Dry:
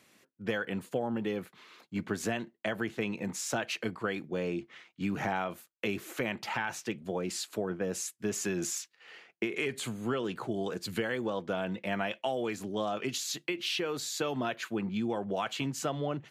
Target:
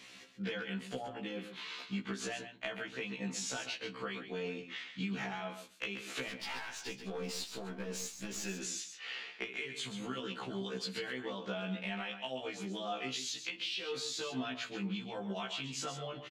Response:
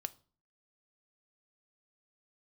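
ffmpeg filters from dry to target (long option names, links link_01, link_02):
-filter_complex "[0:a]lowpass=8700,equalizer=frequency=3500:width_type=o:width=1.9:gain=10,acompressor=threshold=-42dB:ratio=6,asettb=1/sr,asplit=3[link_01][link_02][link_03];[link_01]atrim=end=6.284[link_04];[link_02]atrim=start=6.28:end=8.51,asetpts=PTS-STARTPTS,afade=type=in:duration=0.004:curve=qsin,afade=type=out:start_time=2.226:duration=0.004:curve=qsin,aeval=exprs='clip(val(0),-1,0.00631)':channel_layout=same[link_05];[link_03]atrim=start=8.506[link_06];[link_04][link_05]acrossfade=duration=0.004:curve1=hsin:curve2=qsin[link_07];[link_07][link_06]acrossfade=duration=0.004:curve1=qsin:curve2=hsin,aecho=1:1:134:0.355[link_08];[1:a]atrim=start_sample=2205[link_09];[link_08][link_09]afir=irnorm=-1:irlink=0,afftfilt=real='re*1.73*eq(mod(b,3),0)':imag='im*1.73*eq(mod(b,3),0)':win_size=2048:overlap=0.75,volume=8dB"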